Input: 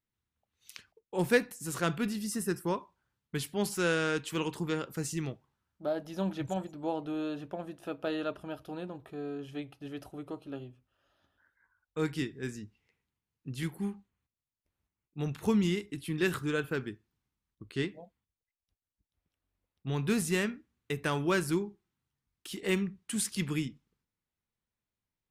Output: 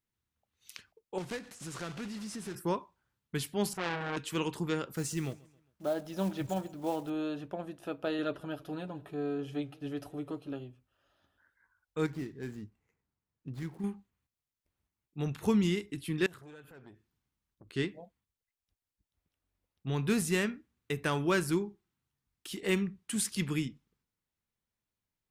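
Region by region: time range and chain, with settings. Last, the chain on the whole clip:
0:01.18–0:02.55: one scale factor per block 3 bits + low-pass filter 7,200 Hz + downward compressor 3 to 1, threshold −39 dBFS
0:03.73–0:04.17: low-pass filter 1,600 Hz 6 dB per octave + low-shelf EQ 160 Hz +11.5 dB + saturating transformer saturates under 2,000 Hz
0:04.96–0:07.10: one scale factor per block 5 bits + repeating echo 134 ms, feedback 43%, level −23 dB
0:08.18–0:10.53: comb filter 7 ms, depth 58% + feedback echo with a swinging delay time 158 ms, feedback 62%, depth 126 cents, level −23.5 dB
0:12.06–0:13.84: running median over 15 samples + downward compressor 2 to 1, threshold −36 dBFS
0:16.26–0:17.74: downward compressor 8 to 1, threshold −46 dBFS + saturating transformer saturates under 1,300 Hz
whole clip: no processing

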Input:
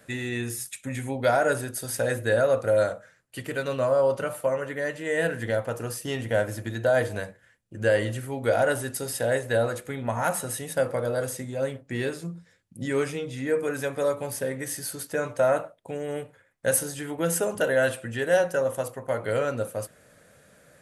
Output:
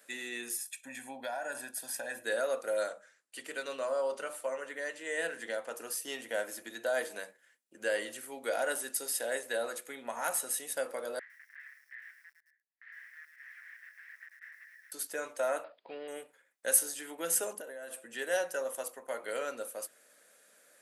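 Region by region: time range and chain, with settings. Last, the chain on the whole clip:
0:00.57–0:02.25: high-shelf EQ 3,600 Hz −8 dB + comb filter 1.2 ms, depth 71% + downward compressor 4 to 1, threshold −25 dBFS
0:02.88–0:05.76: low-pass filter 10,000 Hz 24 dB per octave + mains-hum notches 50/100/150/200/250/300/350/400 Hz
0:11.19–0:14.92: wrap-around overflow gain 28 dB + flat-topped band-pass 1,800 Hz, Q 5.2 + feedback echo at a low word length 107 ms, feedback 35%, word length 10 bits, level −9 dB
0:15.64–0:16.08: mu-law and A-law mismatch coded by mu + Chebyshev low-pass filter 4,900 Hz, order 8
0:17.53–0:18.11: parametric band 3,500 Hz −8.5 dB 2.3 octaves + notch filter 1,400 Hz, Q 23 + downward compressor 16 to 1, threshold −30 dBFS
whole clip: high-pass filter 240 Hz 24 dB per octave; spectral tilt +2.5 dB per octave; level −8.5 dB

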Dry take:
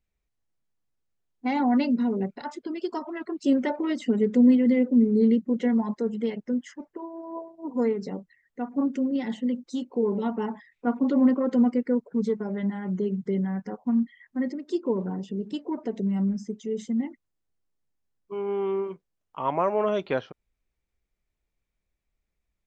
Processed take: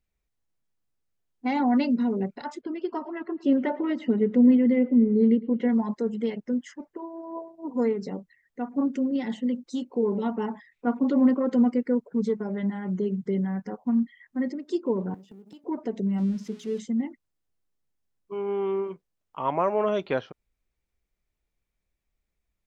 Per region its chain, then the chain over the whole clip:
0:02.61–0:05.69: low-pass filter 2,600 Hz + repeating echo 111 ms, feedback 53%, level −21 dB
0:15.14–0:15.64: mu-law and A-law mismatch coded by A + high-pass filter 140 Hz 24 dB per octave + downward compressor 16 to 1, threshold −43 dBFS
0:16.18–0:16.80: spike at every zero crossing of −32.5 dBFS + low-pass filter 4,000 Hz + mains-hum notches 60/120/180/240/300/360/420 Hz
whole clip: no processing

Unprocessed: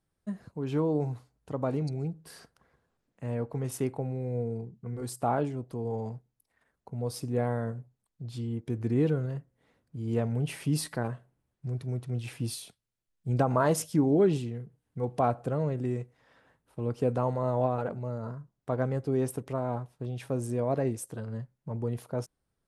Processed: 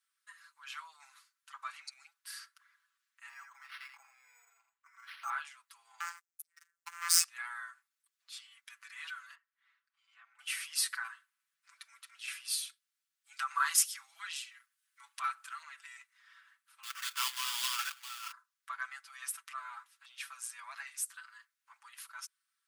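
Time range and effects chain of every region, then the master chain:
0:03.29–0:05.30: high-shelf EQ 3,900 Hz −10.5 dB + single-tap delay 83 ms −6.5 dB + linearly interpolated sample-rate reduction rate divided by 6×
0:06.00–0:07.24: tilt shelving filter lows −5.5 dB, about 910 Hz + leveller curve on the samples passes 5 + phases set to zero 171 Hz
0:09.35–0:10.39: downward compressor 2.5 to 1, threshold −40 dBFS + head-to-tape spacing loss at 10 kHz 22 dB
0:13.33–0:15.63: high-pass filter 1,000 Hz + high-shelf EQ 4,200 Hz +4 dB
0:16.83–0:18.32: high-pass filter 610 Hz + parametric band 4,000 Hz +15 dB 1.4 octaves + sample-rate reduction 4,000 Hz, jitter 20%
whole clip: Butterworth high-pass 1,200 Hz 48 dB per octave; comb filter 6 ms, depth 80%; level +2.5 dB

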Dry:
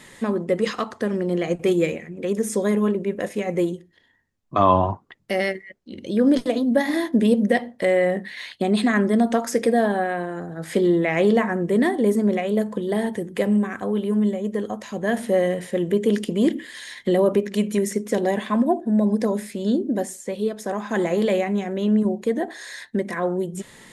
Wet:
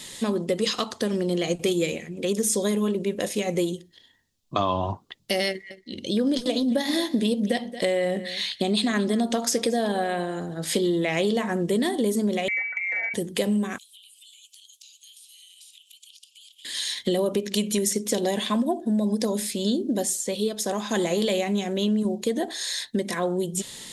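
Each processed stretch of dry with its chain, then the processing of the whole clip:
0:05.48–0:10.67: high-shelf EQ 9,600 Hz −6.5 dB + single-tap delay 225 ms −18.5 dB
0:12.48–0:13.14: voice inversion scrambler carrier 2,500 Hz + downward compressor 2.5 to 1, threshold −26 dBFS
0:13.78–0:16.65: Butterworth high-pass 2,500 Hz 72 dB per octave + downward compressor 16 to 1, threshold −56 dBFS
whole clip: high shelf with overshoot 2,600 Hz +10 dB, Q 1.5; downward compressor, threshold −20 dBFS

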